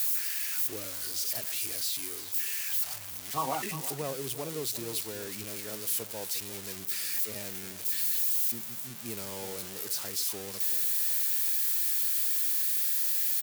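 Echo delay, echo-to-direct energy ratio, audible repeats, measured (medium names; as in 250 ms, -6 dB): 354 ms, -13.5 dB, 1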